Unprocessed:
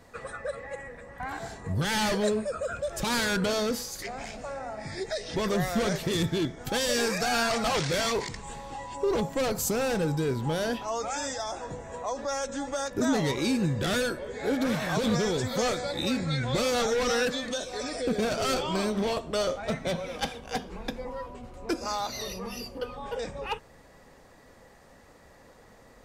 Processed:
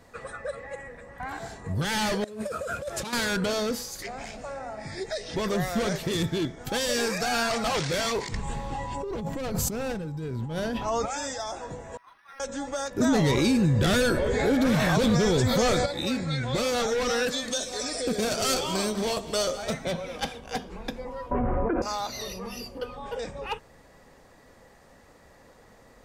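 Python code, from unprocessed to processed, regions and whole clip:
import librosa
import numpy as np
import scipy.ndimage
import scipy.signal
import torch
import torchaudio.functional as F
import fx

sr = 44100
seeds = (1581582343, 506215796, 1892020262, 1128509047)

y = fx.chain(x, sr, fx.cvsd(bps=64000),
    fx.highpass(hz=76.0, slope=12),
    fx.over_compress(threshold_db=-32.0, ratio=-0.5), at=(2.24, 3.13))
y = fx.chain(y, sr, fx.bass_treble(bass_db=8, treble_db=-4),
    fx.over_compress(threshold_db=-30.0, ratio=-1.0), at=(8.32, 11.06))
y = fx.chain(y, sr, fx.bessel_highpass(hz=2100.0, order=8),
    fx.peak_eq(hz=8300.0, db=-13.5, octaves=2.9),
    fx.resample_linear(factor=6), at=(11.97, 12.4))
y = fx.chain(y, sr, fx.low_shelf(hz=150.0, db=8.5),
    fx.env_flatten(amount_pct=70), at=(13.0, 15.86))
y = fx.chain(y, sr, fx.bass_treble(bass_db=-1, treble_db=9),
    fx.echo_single(ms=198, db=-14.5), at=(17.28, 19.85))
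y = fx.chain(y, sr, fx.cheby2_lowpass(hz=4500.0, order=4, stop_db=50),
    fx.env_flatten(amount_pct=100), at=(21.31, 21.82))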